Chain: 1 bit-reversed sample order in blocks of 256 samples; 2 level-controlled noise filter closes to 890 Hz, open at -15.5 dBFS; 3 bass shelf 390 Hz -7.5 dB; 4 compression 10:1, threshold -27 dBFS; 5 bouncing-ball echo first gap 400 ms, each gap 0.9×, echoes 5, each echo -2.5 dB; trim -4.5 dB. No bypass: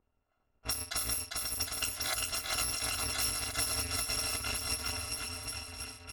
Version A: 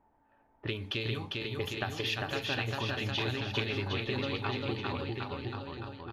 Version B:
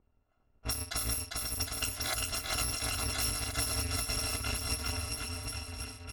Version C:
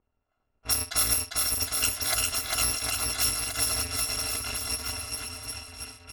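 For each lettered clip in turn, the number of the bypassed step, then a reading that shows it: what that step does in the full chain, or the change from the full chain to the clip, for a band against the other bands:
1, 8 kHz band -27.5 dB; 3, 125 Hz band +6.0 dB; 4, mean gain reduction 3.5 dB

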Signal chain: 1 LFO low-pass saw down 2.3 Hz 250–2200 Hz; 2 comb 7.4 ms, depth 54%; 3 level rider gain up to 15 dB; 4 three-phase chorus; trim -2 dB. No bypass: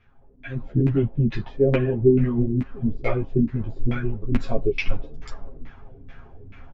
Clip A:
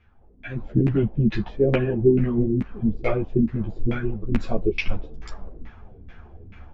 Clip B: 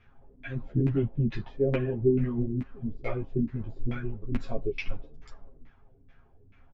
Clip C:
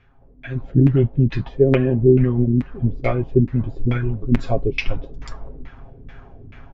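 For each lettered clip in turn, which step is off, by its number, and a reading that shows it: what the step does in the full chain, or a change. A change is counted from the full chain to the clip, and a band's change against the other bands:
2, 125 Hz band -2.0 dB; 3, momentary loudness spread change -4 LU; 4, 125 Hz band +2.0 dB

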